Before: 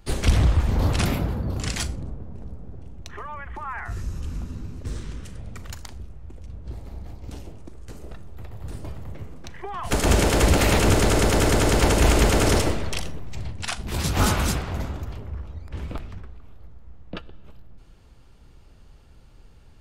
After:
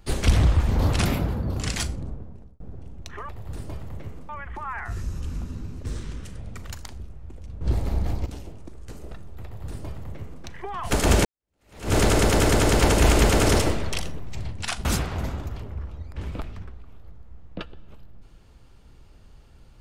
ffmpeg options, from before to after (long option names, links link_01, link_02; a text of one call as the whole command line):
ffmpeg -i in.wav -filter_complex "[0:a]asplit=8[link_01][link_02][link_03][link_04][link_05][link_06][link_07][link_08];[link_01]atrim=end=2.6,asetpts=PTS-STARTPTS,afade=type=out:start_time=2.14:duration=0.46[link_09];[link_02]atrim=start=2.6:end=3.292,asetpts=PTS-STARTPTS,afade=type=in:duration=0.004:curve=hsin[link_10];[link_03]atrim=start=8.438:end=9.442[link_11];[link_04]atrim=start=3.288:end=6.612[link_12];[link_05]atrim=start=6.608:end=7.262,asetpts=PTS-STARTPTS,volume=12dB[link_13];[link_06]atrim=start=7.258:end=10.25,asetpts=PTS-STARTPTS,afade=type=out:start_time=2.988:duration=0.004:curve=hsin[link_14];[link_07]atrim=start=10.25:end=13.852,asetpts=PTS-STARTPTS,afade=type=in:duration=0.7:curve=exp[link_15];[link_08]atrim=start=14.408[link_16];[link_09][link_10]concat=n=2:v=0:a=1[link_17];[link_17][link_11]acrossfade=duration=0.004:curve1=hsin:curve2=hsin[link_18];[link_18][link_12]acrossfade=duration=0.004:curve1=hsin:curve2=hsin[link_19];[link_19][link_13]acrossfade=duration=0.004:curve1=hsin:curve2=hsin[link_20];[link_14][link_15]concat=n=2:v=0:a=1[link_21];[link_20][link_21]acrossfade=duration=0.004:curve1=hsin:curve2=hsin[link_22];[link_22][link_16]acrossfade=duration=0.004:curve1=hsin:curve2=hsin" out.wav